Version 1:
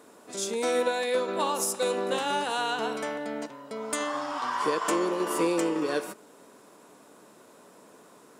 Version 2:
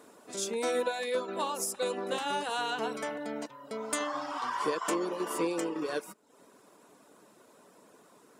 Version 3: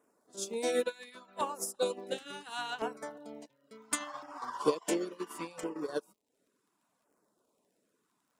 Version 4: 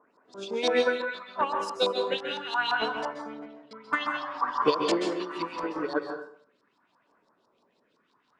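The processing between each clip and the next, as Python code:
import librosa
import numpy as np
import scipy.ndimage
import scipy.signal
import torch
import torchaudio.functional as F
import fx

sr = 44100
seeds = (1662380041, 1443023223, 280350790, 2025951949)

y1 = fx.dereverb_blind(x, sr, rt60_s=0.58)
y1 = fx.rider(y1, sr, range_db=3, speed_s=2.0)
y1 = y1 * librosa.db_to_amplitude(-3.0)
y2 = fx.dmg_crackle(y1, sr, seeds[0], per_s=36.0, level_db=-46.0)
y2 = fx.filter_lfo_notch(y2, sr, shape='saw_down', hz=0.71, low_hz=300.0, high_hz=4300.0, q=1.0)
y2 = fx.upward_expand(y2, sr, threshold_db=-42.0, expansion=2.5)
y2 = y2 * librosa.db_to_amplitude(5.5)
y3 = fx.filter_lfo_lowpass(y2, sr, shape='saw_up', hz=5.9, low_hz=930.0, high_hz=5100.0, q=4.5)
y3 = fx.rev_plate(y3, sr, seeds[1], rt60_s=0.57, hf_ratio=0.65, predelay_ms=120, drr_db=4.0)
y3 = y3 * librosa.db_to_amplitude(4.0)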